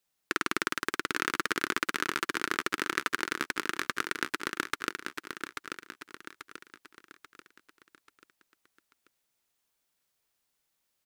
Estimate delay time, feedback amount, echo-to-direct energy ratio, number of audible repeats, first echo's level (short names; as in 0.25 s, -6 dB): 0.837 s, 44%, -5.0 dB, 5, -6.0 dB